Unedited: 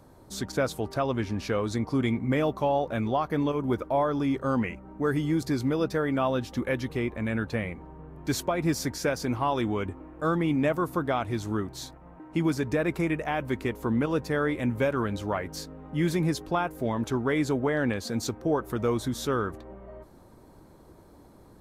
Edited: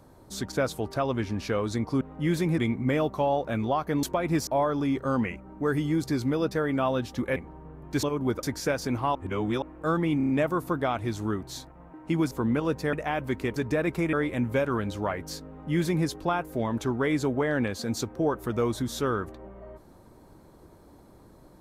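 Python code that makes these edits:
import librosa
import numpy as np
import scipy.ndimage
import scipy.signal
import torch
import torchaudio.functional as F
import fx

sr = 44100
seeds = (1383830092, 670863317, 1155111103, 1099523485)

y = fx.edit(x, sr, fx.swap(start_s=3.46, length_s=0.4, other_s=8.37, other_length_s=0.44),
    fx.cut(start_s=6.75, length_s=0.95),
    fx.reverse_span(start_s=9.53, length_s=0.47),
    fx.stutter(start_s=10.55, slice_s=0.03, count=5),
    fx.swap(start_s=12.57, length_s=0.57, other_s=13.77, other_length_s=0.62),
    fx.duplicate(start_s=15.75, length_s=0.57, to_s=2.01), tone=tone)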